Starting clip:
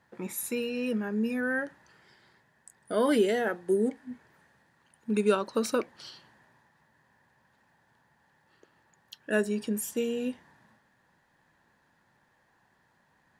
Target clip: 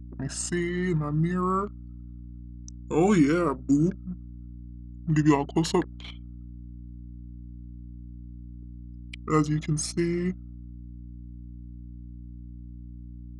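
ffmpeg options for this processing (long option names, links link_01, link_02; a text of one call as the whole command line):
ffmpeg -i in.wav -af "anlmdn=0.0398,asetrate=32097,aresample=44100,atempo=1.37395,aeval=exprs='val(0)+0.00631*(sin(2*PI*60*n/s)+sin(2*PI*2*60*n/s)/2+sin(2*PI*3*60*n/s)/3+sin(2*PI*4*60*n/s)/4+sin(2*PI*5*60*n/s)/5)':channel_layout=same,volume=4dB" out.wav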